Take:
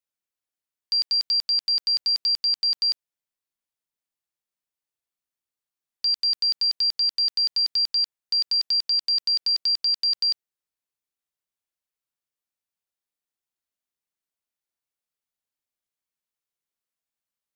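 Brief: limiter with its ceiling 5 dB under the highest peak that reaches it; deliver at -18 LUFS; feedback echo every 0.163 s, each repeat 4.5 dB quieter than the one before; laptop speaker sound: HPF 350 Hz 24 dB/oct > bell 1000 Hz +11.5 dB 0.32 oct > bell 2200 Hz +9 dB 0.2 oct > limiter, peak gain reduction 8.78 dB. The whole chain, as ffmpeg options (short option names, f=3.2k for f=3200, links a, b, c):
-af "alimiter=limit=-23dB:level=0:latency=1,highpass=f=350:w=0.5412,highpass=f=350:w=1.3066,equalizer=f=1k:t=o:w=0.32:g=11.5,equalizer=f=2.2k:t=o:w=0.2:g=9,aecho=1:1:163|326|489|652|815|978|1141|1304|1467:0.596|0.357|0.214|0.129|0.0772|0.0463|0.0278|0.0167|0.01,volume=8.5dB,alimiter=limit=-16dB:level=0:latency=1"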